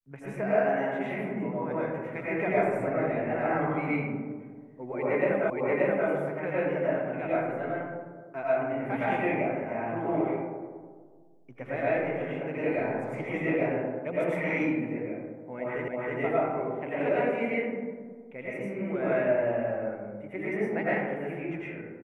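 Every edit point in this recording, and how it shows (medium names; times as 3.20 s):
5.50 s: repeat of the last 0.58 s
15.88 s: repeat of the last 0.32 s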